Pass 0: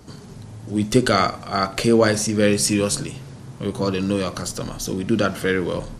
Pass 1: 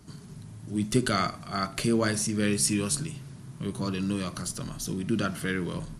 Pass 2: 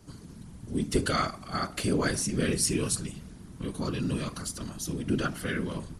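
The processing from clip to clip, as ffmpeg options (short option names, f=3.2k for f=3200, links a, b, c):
-af "equalizer=f=160:t=o:w=0.33:g=8,equalizer=f=500:t=o:w=0.33:g=-10,equalizer=f=800:t=o:w=0.33:g=-6,equalizer=f=10k:t=o:w=0.33:g=8,volume=-7.5dB"
-af "afftfilt=real='hypot(re,im)*cos(2*PI*random(0))':imag='hypot(re,im)*sin(2*PI*random(1))':win_size=512:overlap=0.75,volume=4.5dB"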